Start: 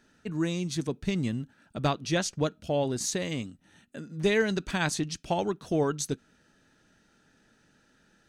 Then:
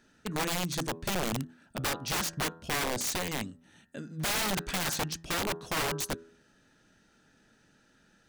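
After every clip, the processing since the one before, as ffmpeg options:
ffmpeg -i in.wav -af "bandreject=frequency=82.41:width_type=h:width=4,bandreject=frequency=164.82:width_type=h:width=4,bandreject=frequency=247.23:width_type=h:width=4,bandreject=frequency=329.64:width_type=h:width=4,bandreject=frequency=412.05:width_type=h:width=4,bandreject=frequency=494.46:width_type=h:width=4,bandreject=frequency=576.87:width_type=h:width=4,bandreject=frequency=659.28:width_type=h:width=4,bandreject=frequency=741.69:width_type=h:width=4,bandreject=frequency=824.1:width_type=h:width=4,bandreject=frequency=906.51:width_type=h:width=4,bandreject=frequency=988.92:width_type=h:width=4,bandreject=frequency=1071.33:width_type=h:width=4,bandreject=frequency=1153.74:width_type=h:width=4,bandreject=frequency=1236.15:width_type=h:width=4,bandreject=frequency=1318.56:width_type=h:width=4,bandreject=frequency=1400.97:width_type=h:width=4,bandreject=frequency=1483.38:width_type=h:width=4,bandreject=frequency=1565.79:width_type=h:width=4,bandreject=frequency=1648.2:width_type=h:width=4,bandreject=frequency=1730.61:width_type=h:width=4,bandreject=frequency=1813.02:width_type=h:width=4,bandreject=frequency=1895.43:width_type=h:width=4,aeval=exprs='(mod(17.8*val(0)+1,2)-1)/17.8':channel_layout=same" out.wav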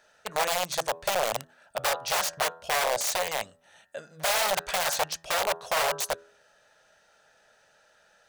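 ffmpeg -i in.wav -af "lowshelf=frequency=410:width_type=q:width=3:gain=-13,volume=3.5dB" out.wav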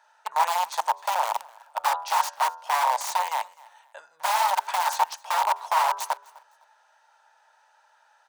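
ffmpeg -i in.wav -af "highpass=frequency=920:width_type=q:width=8.9,aecho=1:1:255|510:0.0668|0.018,volume=-4.5dB" out.wav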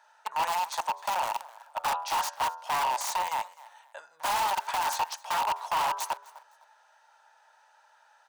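ffmpeg -i in.wav -af "asoftclip=type=tanh:threshold=-23dB" out.wav

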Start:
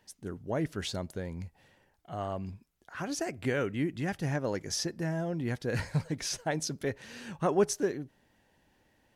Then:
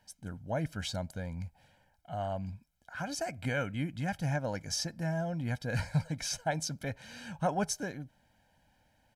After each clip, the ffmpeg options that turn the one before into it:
ffmpeg -i in.wav -af "aecho=1:1:1.3:0.79,volume=-3dB" out.wav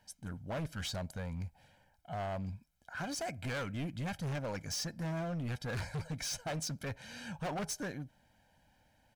ffmpeg -i in.wav -af "asoftclip=type=hard:threshold=-34.5dB" out.wav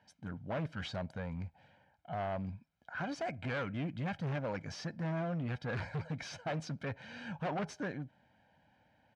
ffmpeg -i in.wav -af "highpass=100,lowpass=2900,volume=1.5dB" out.wav

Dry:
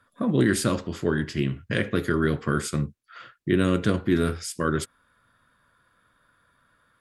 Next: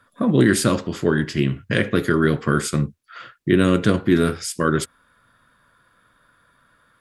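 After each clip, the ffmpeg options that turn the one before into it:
ffmpeg -i in.wav -af "equalizer=frequency=81:width_type=o:width=0.29:gain=-7,volume=5.5dB" out.wav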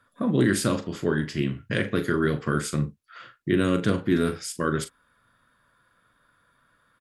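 ffmpeg -i in.wav -filter_complex "[0:a]asplit=2[link_01][link_02];[link_02]adelay=40,volume=-11dB[link_03];[link_01][link_03]amix=inputs=2:normalize=0,volume=-6dB" out.wav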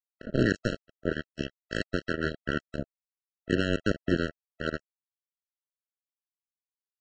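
ffmpeg -i in.wav -af "aresample=16000,acrusher=bits=2:mix=0:aa=0.5,aresample=44100,afftfilt=real='re*eq(mod(floor(b*sr/1024/650),2),0)':imag='im*eq(mod(floor(b*sr/1024/650),2),0)':win_size=1024:overlap=0.75,volume=-3dB" out.wav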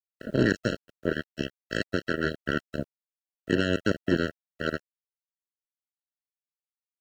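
ffmpeg -i in.wav -filter_complex "[0:a]highpass=frequency=90:poles=1,acrusher=bits=10:mix=0:aa=0.000001,asplit=2[link_01][link_02];[link_02]asoftclip=type=tanh:threshold=-21dB,volume=-6.5dB[link_03];[link_01][link_03]amix=inputs=2:normalize=0" out.wav

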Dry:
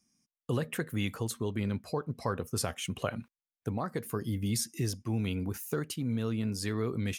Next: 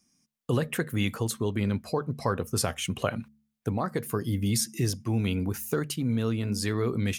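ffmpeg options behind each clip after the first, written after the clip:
ffmpeg -i in.wav -af "bandreject=frequency=72.54:width_type=h:width=4,bandreject=frequency=145.08:width_type=h:width=4,bandreject=frequency=217.62:width_type=h:width=4,volume=5dB" out.wav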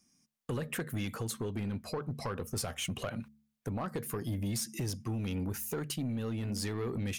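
ffmpeg -i in.wav -af "acompressor=threshold=-27dB:ratio=6,asoftclip=type=tanh:threshold=-27.5dB,volume=-1dB" out.wav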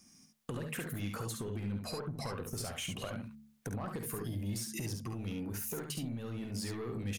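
ffmpeg -i in.wav -filter_complex "[0:a]alimiter=level_in=11dB:limit=-24dB:level=0:latency=1:release=283,volume=-11dB,acompressor=threshold=-46dB:ratio=6,asplit=2[link_01][link_02];[link_02]aecho=0:1:50|69:0.335|0.531[link_03];[link_01][link_03]amix=inputs=2:normalize=0,volume=8dB" out.wav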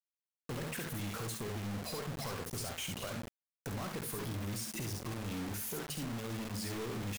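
ffmpeg -i in.wav -af "asoftclip=type=tanh:threshold=-37dB,acrusher=bits=6:mix=0:aa=0.000001" out.wav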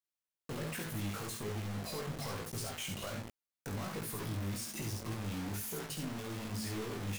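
ffmpeg -i in.wav -af "flanger=delay=18:depth=2.8:speed=1.2,volume=2.5dB" out.wav

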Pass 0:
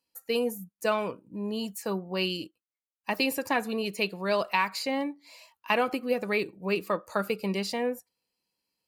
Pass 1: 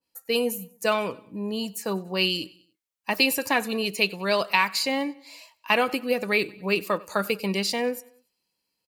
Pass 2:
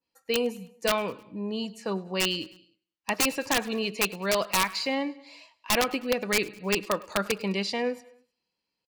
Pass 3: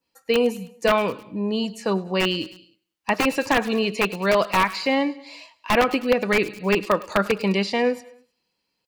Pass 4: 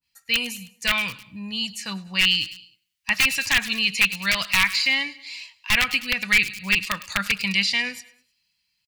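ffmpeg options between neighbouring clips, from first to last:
ffmpeg -i in.wav -af "aecho=1:1:95|190|285:0.0708|0.0361|0.0184,adynamicequalizer=threshold=0.01:dfrequency=1900:dqfactor=0.7:tfrequency=1900:tqfactor=0.7:attack=5:release=100:ratio=0.375:range=3:mode=boostabove:tftype=highshelf,volume=2.5dB" out.wav
ffmpeg -i in.wav -af "lowpass=4700,aeval=exprs='(mod(4.47*val(0)+1,2)-1)/4.47':channel_layout=same,aecho=1:1:104|208|312:0.0708|0.0368|0.0191,volume=-2dB" out.wav
ffmpeg -i in.wav -filter_complex "[0:a]acrossover=split=2700[link_01][link_02];[link_02]acompressor=threshold=-38dB:ratio=4:attack=1:release=60[link_03];[link_01][link_03]amix=inputs=2:normalize=0,volume=7.5dB" out.wav
ffmpeg -i in.wav -af "firequalizer=gain_entry='entry(100,0);entry(380,-28);entry(830,-15);entry(2000,1)':delay=0.05:min_phase=1,volume=14dB,asoftclip=hard,volume=-14dB,adynamicequalizer=threshold=0.0158:dfrequency=1700:dqfactor=0.7:tfrequency=1700:tqfactor=0.7:attack=5:release=100:ratio=0.375:range=2.5:mode=boostabove:tftype=highshelf,volume=2.5dB" out.wav

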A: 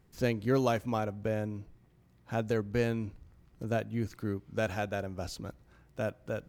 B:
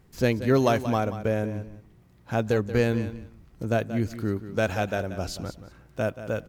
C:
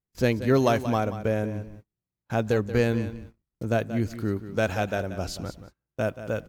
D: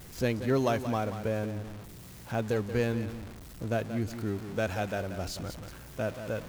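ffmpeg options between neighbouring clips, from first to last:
ffmpeg -i in.wav -af "aecho=1:1:181|362:0.237|0.0451,volume=6.5dB" out.wav
ffmpeg -i in.wav -af "agate=range=-34dB:threshold=-44dB:ratio=16:detection=peak" out.wav
ffmpeg -i in.wav -af "aeval=exprs='val(0)+0.5*0.0224*sgn(val(0))':channel_layout=same,volume=-6.5dB" out.wav

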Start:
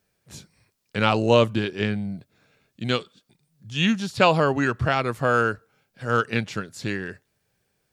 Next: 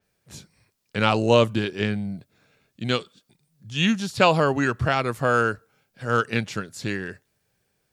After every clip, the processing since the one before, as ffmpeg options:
ffmpeg -i in.wav -af "adynamicequalizer=threshold=0.0126:dfrequency=5500:dqfactor=0.7:tfrequency=5500:tqfactor=0.7:attack=5:release=100:ratio=0.375:range=2:mode=boostabove:tftype=highshelf" out.wav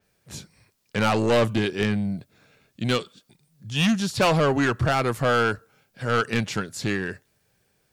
ffmpeg -i in.wav -af "asoftclip=type=tanh:threshold=-19.5dB,volume=4dB" out.wav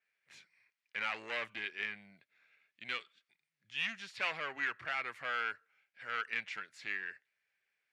ffmpeg -i in.wav -af "bandpass=frequency=2100:width_type=q:width=3.2:csg=0,volume=-3.5dB" out.wav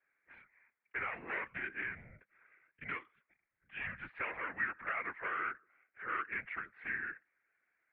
ffmpeg -i in.wav -filter_complex "[0:a]acrossover=split=740|1600[link_01][link_02][link_03];[link_01]acompressor=threshold=-55dB:ratio=4[link_04];[link_02]acompressor=threshold=-52dB:ratio=4[link_05];[link_03]acompressor=threshold=-39dB:ratio=4[link_06];[link_04][link_05][link_06]amix=inputs=3:normalize=0,highpass=frequency=170:width_type=q:width=0.5412,highpass=frequency=170:width_type=q:width=1.307,lowpass=frequency=2200:width_type=q:width=0.5176,lowpass=frequency=2200:width_type=q:width=0.7071,lowpass=frequency=2200:width_type=q:width=1.932,afreqshift=-84,afftfilt=real='hypot(re,im)*cos(2*PI*random(0))':imag='hypot(re,im)*sin(2*PI*random(1))':win_size=512:overlap=0.75,volume=11.5dB" out.wav

